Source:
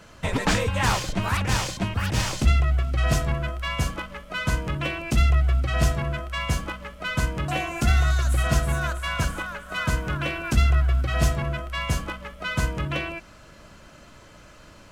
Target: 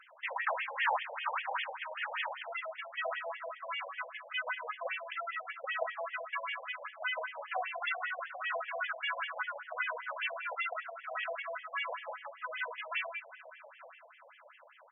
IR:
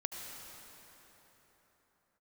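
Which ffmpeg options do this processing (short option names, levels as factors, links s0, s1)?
-filter_complex "[0:a]asplit=2[s0][s1];[s1]adelay=874.6,volume=0.178,highshelf=f=4000:g=-19.7[s2];[s0][s2]amix=inputs=2:normalize=0,asplit=2[s3][s4];[1:a]atrim=start_sample=2205[s5];[s4][s5]afir=irnorm=-1:irlink=0,volume=0.335[s6];[s3][s6]amix=inputs=2:normalize=0,afftfilt=real='re*between(b*sr/1024,640*pow(2500/640,0.5+0.5*sin(2*PI*5.1*pts/sr))/1.41,640*pow(2500/640,0.5+0.5*sin(2*PI*5.1*pts/sr))*1.41)':imag='im*between(b*sr/1024,640*pow(2500/640,0.5+0.5*sin(2*PI*5.1*pts/sr))/1.41,640*pow(2500/640,0.5+0.5*sin(2*PI*5.1*pts/sr))*1.41)':win_size=1024:overlap=0.75,volume=0.631"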